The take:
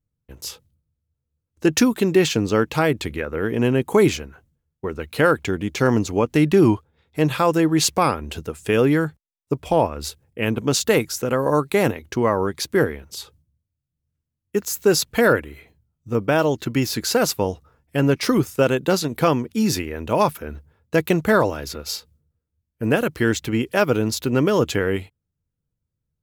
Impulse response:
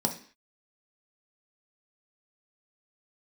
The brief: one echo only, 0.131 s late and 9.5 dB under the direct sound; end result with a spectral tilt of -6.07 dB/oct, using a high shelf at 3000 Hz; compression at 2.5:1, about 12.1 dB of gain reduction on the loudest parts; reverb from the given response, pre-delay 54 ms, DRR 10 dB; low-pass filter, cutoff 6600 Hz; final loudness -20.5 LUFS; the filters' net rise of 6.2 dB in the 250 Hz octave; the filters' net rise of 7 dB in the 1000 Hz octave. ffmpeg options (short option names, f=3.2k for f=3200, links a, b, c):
-filter_complex "[0:a]lowpass=6.6k,equalizer=f=250:t=o:g=7.5,equalizer=f=1k:t=o:g=9,highshelf=f=3k:g=-5.5,acompressor=threshold=-24dB:ratio=2.5,aecho=1:1:131:0.335,asplit=2[a][b];[1:a]atrim=start_sample=2205,adelay=54[c];[b][c]afir=irnorm=-1:irlink=0,volume=-17.5dB[d];[a][d]amix=inputs=2:normalize=0,volume=3.5dB"